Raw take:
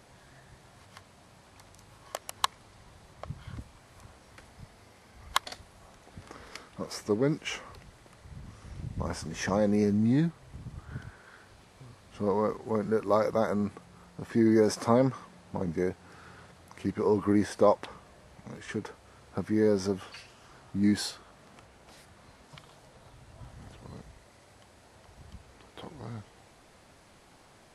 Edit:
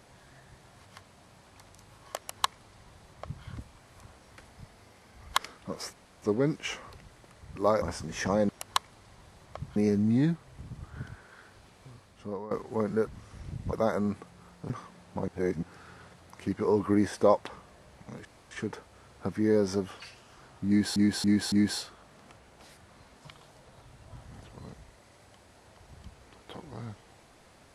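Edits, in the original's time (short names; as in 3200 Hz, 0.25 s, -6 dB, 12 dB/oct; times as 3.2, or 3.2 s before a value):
2.17–3.44 copy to 9.71
5.38–6.49 cut
7.04 insert room tone 0.29 s
8.38–9.04 swap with 13.02–13.28
11.85–12.46 fade out, to -17.5 dB
14.25–15.08 cut
15.66–16.01 reverse
18.63 insert room tone 0.26 s
20.8–21.08 loop, 4 plays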